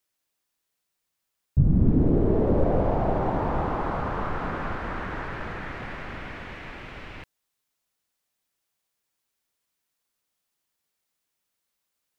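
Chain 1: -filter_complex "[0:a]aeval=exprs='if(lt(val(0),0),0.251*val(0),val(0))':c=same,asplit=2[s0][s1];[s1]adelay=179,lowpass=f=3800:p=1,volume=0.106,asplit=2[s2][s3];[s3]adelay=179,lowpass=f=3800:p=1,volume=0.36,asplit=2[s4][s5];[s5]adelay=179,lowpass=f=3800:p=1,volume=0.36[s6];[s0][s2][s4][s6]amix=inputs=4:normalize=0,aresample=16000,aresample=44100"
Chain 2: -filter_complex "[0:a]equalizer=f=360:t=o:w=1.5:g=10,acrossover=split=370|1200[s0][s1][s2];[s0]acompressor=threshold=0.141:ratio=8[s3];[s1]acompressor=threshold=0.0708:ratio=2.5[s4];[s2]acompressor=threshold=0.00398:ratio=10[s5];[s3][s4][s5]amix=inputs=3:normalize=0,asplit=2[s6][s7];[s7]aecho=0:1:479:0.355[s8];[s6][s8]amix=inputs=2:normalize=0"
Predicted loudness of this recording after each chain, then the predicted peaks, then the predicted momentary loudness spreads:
-29.0 LUFS, -23.0 LUFS; -7.0 dBFS, -6.5 dBFS; 18 LU, 19 LU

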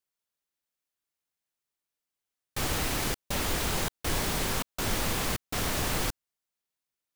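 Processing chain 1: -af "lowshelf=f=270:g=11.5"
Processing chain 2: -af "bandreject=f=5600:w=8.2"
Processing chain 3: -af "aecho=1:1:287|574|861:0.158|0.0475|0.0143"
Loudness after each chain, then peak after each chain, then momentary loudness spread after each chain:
-26.5 LUFS, -30.5 LUFS, -30.0 LUFS; -10.0 dBFS, -16.0 dBFS, -15.5 dBFS; 3 LU, 3 LU, 5 LU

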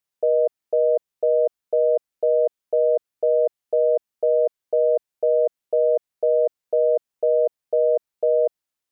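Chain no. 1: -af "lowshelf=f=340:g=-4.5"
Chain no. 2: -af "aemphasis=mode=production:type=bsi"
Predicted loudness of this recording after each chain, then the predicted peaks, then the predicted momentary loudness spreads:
-23.0 LUFS, -23.0 LUFS; -13.0 dBFS, -13.0 dBFS; 2 LU, 2 LU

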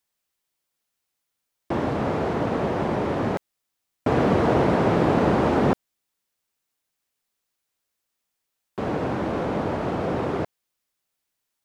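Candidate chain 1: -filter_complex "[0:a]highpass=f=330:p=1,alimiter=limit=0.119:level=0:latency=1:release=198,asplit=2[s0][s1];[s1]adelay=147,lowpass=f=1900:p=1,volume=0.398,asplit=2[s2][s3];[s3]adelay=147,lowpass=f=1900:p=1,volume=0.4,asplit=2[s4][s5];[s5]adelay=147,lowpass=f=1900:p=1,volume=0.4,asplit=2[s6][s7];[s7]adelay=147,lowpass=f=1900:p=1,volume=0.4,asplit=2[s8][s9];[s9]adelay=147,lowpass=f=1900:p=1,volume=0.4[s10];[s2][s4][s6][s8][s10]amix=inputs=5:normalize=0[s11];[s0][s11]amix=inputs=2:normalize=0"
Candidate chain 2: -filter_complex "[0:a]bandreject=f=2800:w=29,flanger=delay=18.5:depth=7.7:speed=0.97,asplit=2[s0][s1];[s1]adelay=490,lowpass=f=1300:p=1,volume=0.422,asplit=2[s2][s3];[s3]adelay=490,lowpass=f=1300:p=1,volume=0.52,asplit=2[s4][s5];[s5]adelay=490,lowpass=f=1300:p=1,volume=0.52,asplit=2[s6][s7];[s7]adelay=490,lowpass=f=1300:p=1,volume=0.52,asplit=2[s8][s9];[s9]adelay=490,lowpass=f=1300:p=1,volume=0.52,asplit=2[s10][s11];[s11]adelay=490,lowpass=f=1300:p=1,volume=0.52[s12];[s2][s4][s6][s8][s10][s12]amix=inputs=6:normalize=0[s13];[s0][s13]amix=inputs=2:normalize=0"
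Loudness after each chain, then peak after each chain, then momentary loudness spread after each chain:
-28.5 LUFS, -27.0 LUFS; -16.0 dBFS, -9.5 dBFS; 9 LU, 19 LU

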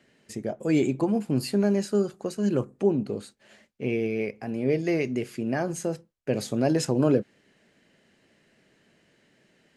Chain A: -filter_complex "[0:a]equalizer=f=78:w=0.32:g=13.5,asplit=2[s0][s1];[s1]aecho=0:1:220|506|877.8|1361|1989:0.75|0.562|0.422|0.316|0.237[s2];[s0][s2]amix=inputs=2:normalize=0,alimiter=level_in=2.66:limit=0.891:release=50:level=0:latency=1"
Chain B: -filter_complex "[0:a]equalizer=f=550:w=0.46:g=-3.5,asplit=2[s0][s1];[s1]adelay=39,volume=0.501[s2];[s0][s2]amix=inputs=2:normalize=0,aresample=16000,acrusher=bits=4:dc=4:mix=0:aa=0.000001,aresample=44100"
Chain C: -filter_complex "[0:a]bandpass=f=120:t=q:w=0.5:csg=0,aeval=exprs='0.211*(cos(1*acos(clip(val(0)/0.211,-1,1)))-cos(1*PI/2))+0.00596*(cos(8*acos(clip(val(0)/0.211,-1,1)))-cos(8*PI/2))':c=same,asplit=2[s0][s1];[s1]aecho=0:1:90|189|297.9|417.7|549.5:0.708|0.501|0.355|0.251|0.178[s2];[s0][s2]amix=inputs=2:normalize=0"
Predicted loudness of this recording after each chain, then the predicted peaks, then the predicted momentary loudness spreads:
-11.5 LUFS, -30.5 LUFS, -27.0 LUFS; -1.0 dBFS, -9.5 dBFS, -11.0 dBFS; 11 LU, 12 LU, 13 LU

